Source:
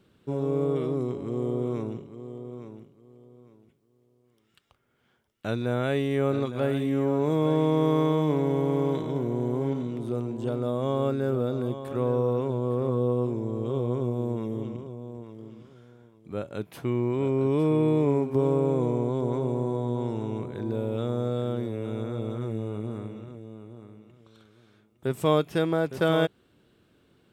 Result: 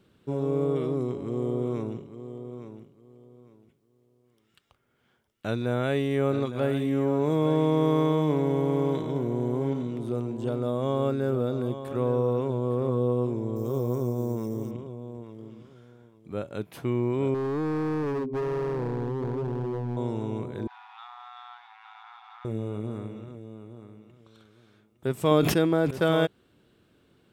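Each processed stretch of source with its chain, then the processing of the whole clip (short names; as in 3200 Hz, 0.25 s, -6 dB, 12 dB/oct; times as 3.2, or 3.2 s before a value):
13.56–14.71 resonant high shelf 4300 Hz +10 dB, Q 3 + careless resampling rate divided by 3×, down filtered, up hold
17.34–19.97 spectral contrast raised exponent 1.8 + hard clip -26.5 dBFS
20.67–22.45 G.711 law mismatch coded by mu + brick-wall FIR high-pass 720 Hz + air absorption 270 m
25.31–25.91 bell 270 Hz +5 dB 0.89 oct + sustainer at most 49 dB/s
whole clip: dry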